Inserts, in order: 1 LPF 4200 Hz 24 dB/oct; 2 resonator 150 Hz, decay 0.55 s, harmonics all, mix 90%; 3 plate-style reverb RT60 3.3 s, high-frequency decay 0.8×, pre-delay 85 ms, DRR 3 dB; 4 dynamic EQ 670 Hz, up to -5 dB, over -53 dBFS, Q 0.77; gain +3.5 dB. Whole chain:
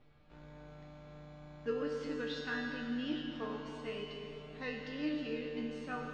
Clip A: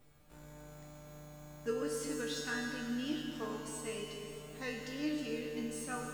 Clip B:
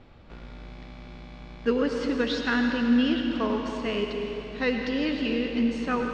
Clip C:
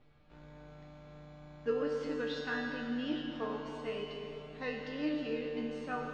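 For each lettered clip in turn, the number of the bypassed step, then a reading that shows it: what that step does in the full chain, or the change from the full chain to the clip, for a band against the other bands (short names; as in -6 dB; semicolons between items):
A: 1, 4 kHz band +1.5 dB; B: 2, 125 Hz band -4.5 dB; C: 4, 500 Hz band +2.5 dB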